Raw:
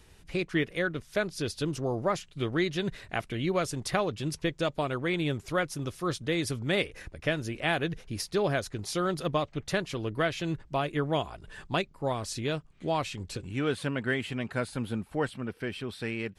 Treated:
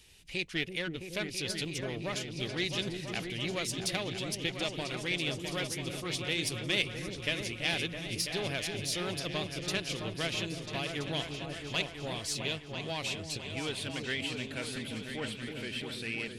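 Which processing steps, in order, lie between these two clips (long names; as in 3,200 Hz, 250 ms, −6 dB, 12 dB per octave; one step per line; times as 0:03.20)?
one-sided soft clipper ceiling −24 dBFS
high shelf with overshoot 1,900 Hz +10 dB, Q 1.5
echo whose low-pass opens from repeat to repeat 331 ms, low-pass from 400 Hz, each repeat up 2 octaves, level −3 dB
level −7.5 dB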